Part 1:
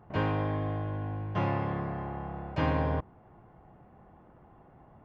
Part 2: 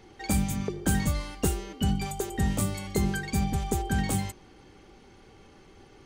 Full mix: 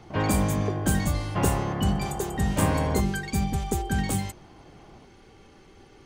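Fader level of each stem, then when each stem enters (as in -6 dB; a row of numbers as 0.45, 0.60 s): +3.0, +1.0 dB; 0.00, 0.00 s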